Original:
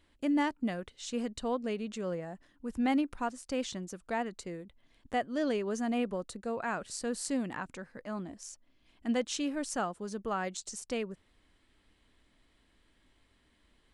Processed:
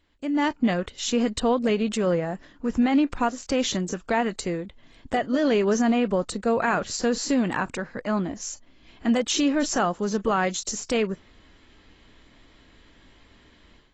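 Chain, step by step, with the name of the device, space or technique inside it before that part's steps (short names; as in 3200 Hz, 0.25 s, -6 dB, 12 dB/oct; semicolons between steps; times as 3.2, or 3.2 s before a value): low-bitrate web radio (AGC gain up to 13 dB; limiter -13.5 dBFS, peak gain reduction 8.5 dB; AAC 24 kbps 24000 Hz)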